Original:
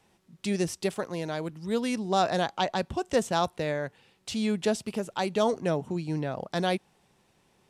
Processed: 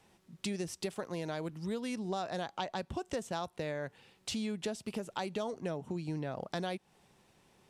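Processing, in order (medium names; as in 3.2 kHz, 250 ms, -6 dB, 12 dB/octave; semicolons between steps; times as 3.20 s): compression 6:1, threshold -34 dBFS, peak gain reduction 14 dB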